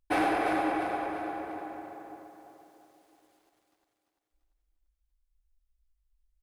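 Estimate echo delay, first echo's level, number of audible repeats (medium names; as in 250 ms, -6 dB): 343 ms, -6.5 dB, 4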